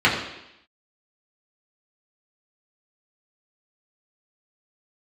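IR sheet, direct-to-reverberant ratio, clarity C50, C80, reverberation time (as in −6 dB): −6.0 dB, 5.5 dB, 7.5 dB, 0.85 s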